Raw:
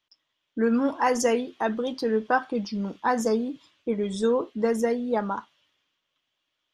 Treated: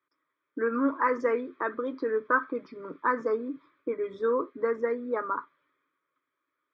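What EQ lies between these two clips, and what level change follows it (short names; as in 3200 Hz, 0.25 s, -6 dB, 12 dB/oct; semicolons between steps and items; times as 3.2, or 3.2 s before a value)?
dynamic EQ 360 Hz, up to -6 dB, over -35 dBFS, Q 1; speaker cabinet 150–2900 Hz, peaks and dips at 170 Hz +10 dB, 270 Hz +10 dB, 380 Hz +4 dB, 1200 Hz +8 dB, 2400 Hz +8 dB; fixed phaser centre 760 Hz, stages 6; 0.0 dB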